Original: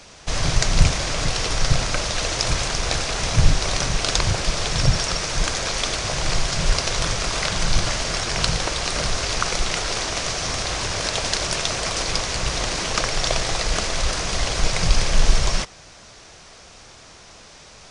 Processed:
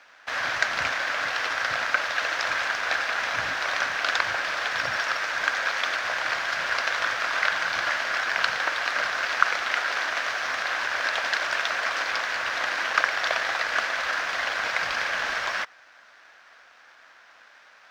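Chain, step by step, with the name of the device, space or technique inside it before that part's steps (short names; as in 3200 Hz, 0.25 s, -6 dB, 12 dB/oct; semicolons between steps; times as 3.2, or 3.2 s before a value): phone line with mismatched companding (BPF 360–3200 Hz; G.711 law mismatch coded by A); fifteen-band EQ 160 Hz -11 dB, 400 Hz -10 dB, 1600 Hz +12 dB; gain -1.5 dB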